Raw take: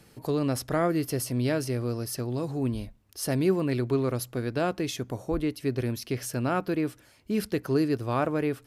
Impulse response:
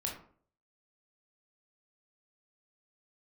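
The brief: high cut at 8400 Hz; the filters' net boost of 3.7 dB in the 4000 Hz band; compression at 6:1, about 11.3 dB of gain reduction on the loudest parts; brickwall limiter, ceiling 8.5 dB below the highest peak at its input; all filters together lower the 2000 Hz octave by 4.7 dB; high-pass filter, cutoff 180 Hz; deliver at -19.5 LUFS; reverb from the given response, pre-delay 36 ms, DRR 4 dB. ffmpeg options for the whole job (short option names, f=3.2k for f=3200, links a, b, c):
-filter_complex "[0:a]highpass=180,lowpass=8.4k,equalizer=f=2k:t=o:g=-8.5,equalizer=f=4k:t=o:g=7,acompressor=threshold=-33dB:ratio=6,alimiter=level_in=6.5dB:limit=-24dB:level=0:latency=1,volume=-6.5dB,asplit=2[a][b];[1:a]atrim=start_sample=2205,adelay=36[c];[b][c]afir=irnorm=-1:irlink=0,volume=-5.5dB[d];[a][d]amix=inputs=2:normalize=0,volume=20dB"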